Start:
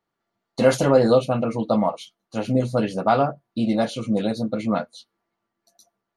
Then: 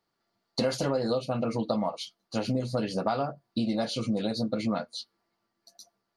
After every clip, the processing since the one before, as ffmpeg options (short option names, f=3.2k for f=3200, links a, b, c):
-af "equalizer=f=4.7k:w=3.1:g=11,acompressor=threshold=-25dB:ratio=6"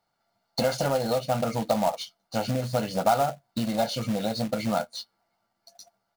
-af "equalizer=f=860:t=o:w=1:g=5.5,aecho=1:1:1.4:0.55,acrusher=bits=3:mode=log:mix=0:aa=0.000001"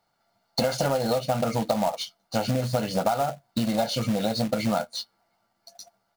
-af "acompressor=threshold=-24dB:ratio=6,volume=4dB"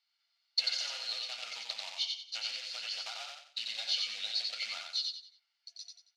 -filter_complex "[0:a]asuperpass=centerf=3500:order=4:qfactor=1.2,asplit=2[a][b];[b]aecho=0:1:91|182|273|364:0.668|0.221|0.0728|0.024[c];[a][c]amix=inputs=2:normalize=0"